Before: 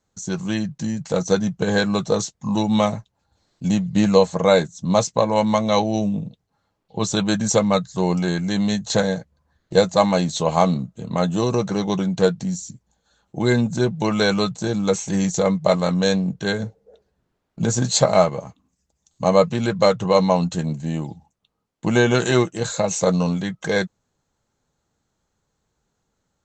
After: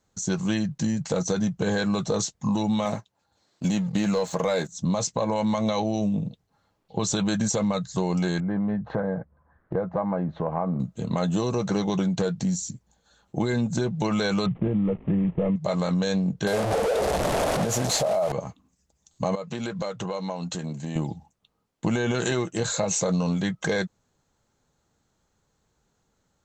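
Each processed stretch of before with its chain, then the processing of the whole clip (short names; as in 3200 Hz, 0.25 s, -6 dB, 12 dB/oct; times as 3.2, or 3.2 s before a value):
2.85–4.72 HPF 250 Hz 6 dB/oct + sample leveller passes 1
8.4–10.8 LPF 1500 Hz 24 dB/oct + compressor 2.5:1, threshold -27 dBFS + mismatched tape noise reduction encoder only
14.46–15.56 CVSD 16 kbps + tilt shelf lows +7.5 dB, about 640 Hz + notch 1500 Hz, Q 5.6
16.47–18.32 delta modulation 64 kbps, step -20 dBFS + bell 630 Hz +14.5 dB 0.98 oct
19.35–20.96 HPF 220 Hz 6 dB/oct + compressor 8:1, threshold -29 dBFS
whole clip: limiter -13 dBFS; compressor, threshold -23 dBFS; gain +2 dB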